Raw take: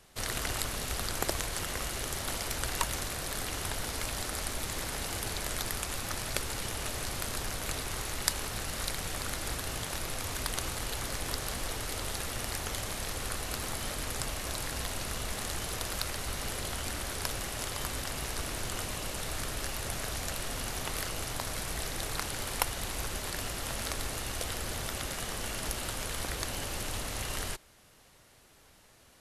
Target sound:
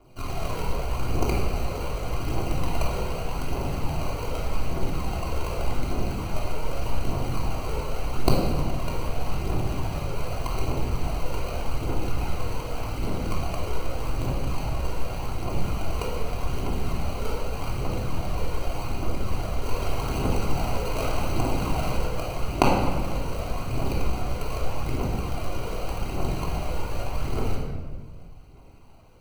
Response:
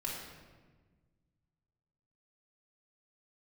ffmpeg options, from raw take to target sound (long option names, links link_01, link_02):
-filter_complex "[0:a]asettb=1/sr,asplit=3[link_01][link_02][link_03];[link_01]atrim=end=19.664[link_04];[link_02]atrim=start=19.66:end=21.97,asetpts=PTS-STARTPTS,afade=type=in:duration=0.004:curve=qsin,afade=type=out:start_time=2.306:duration=0.004:curve=qsin,highshelf=frequency=4500:gain=9[link_05];[link_03]atrim=start=21.966[link_06];[link_04][link_05]acrossfade=duration=0.004:curve1=hsin:curve2=qsin[link_07];[link_07][link_06]acrossfade=duration=0.004:curve1=qsin:curve2=hsin,acrusher=samples=25:mix=1:aa=0.000001,aphaser=in_gain=1:out_gain=1:delay=2.3:decay=0.59:speed=0.84:type=triangular[link_08];[1:a]atrim=start_sample=2205[link_09];[link_08][link_09]afir=irnorm=-1:irlink=0"